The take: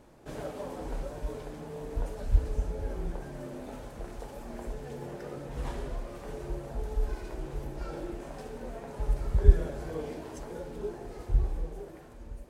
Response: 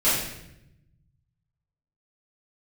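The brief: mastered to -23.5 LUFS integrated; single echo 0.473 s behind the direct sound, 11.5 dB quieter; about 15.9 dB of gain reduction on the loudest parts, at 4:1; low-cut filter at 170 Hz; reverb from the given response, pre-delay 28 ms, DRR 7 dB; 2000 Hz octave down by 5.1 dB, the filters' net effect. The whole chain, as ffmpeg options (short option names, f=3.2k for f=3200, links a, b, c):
-filter_complex "[0:a]highpass=170,equalizer=f=2k:t=o:g=-7,acompressor=threshold=-46dB:ratio=4,aecho=1:1:473:0.266,asplit=2[a][b];[1:a]atrim=start_sample=2205,adelay=28[c];[b][c]afir=irnorm=-1:irlink=0,volume=-22.5dB[d];[a][d]amix=inputs=2:normalize=0,volume=24.5dB"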